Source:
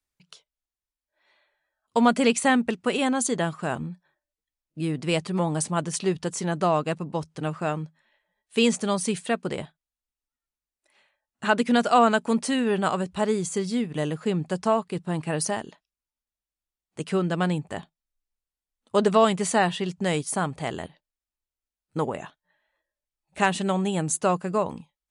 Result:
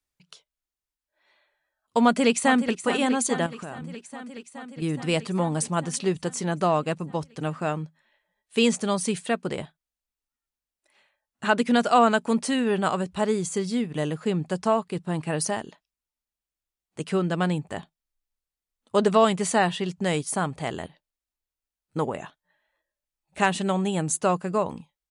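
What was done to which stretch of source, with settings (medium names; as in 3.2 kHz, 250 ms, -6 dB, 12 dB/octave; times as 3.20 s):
2.03–2.77 s: echo throw 420 ms, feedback 75%, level -11 dB
3.46–4.82 s: compression, threshold -32 dBFS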